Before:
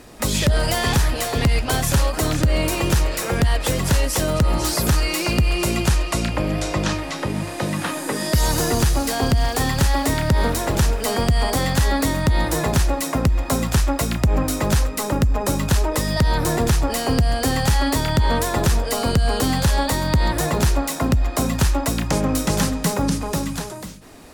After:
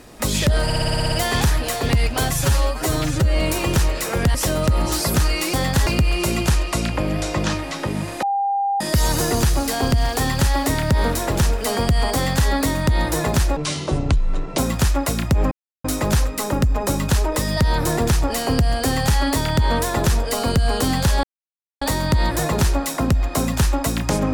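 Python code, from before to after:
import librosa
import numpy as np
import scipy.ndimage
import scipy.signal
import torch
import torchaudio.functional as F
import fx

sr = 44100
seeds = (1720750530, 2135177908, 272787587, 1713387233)

y = fx.edit(x, sr, fx.stutter(start_s=0.64, slice_s=0.06, count=9),
    fx.stretch_span(start_s=1.85, length_s=0.71, factor=1.5),
    fx.cut(start_s=3.51, length_s=0.56),
    fx.bleep(start_s=7.62, length_s=0.58, hz=798.0, db=-17.5),
    fx.duplicate(start_s=11.55, length_s=0.33, to_s=5.26),
    fx.speed_span(start_s=12.96, length_s=0.55, speed=0.54),
    fx.insert_silence(at_s=14.44, length_s=0.33),
    fx.insert_silence(at_s=19.83, length_s=0.58), tone=tone)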